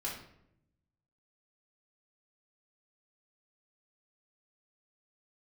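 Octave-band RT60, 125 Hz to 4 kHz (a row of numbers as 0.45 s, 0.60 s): 1.4 s, 1.2 s, 0.85 s, 0.65 s, 0.60 s, 0.50 s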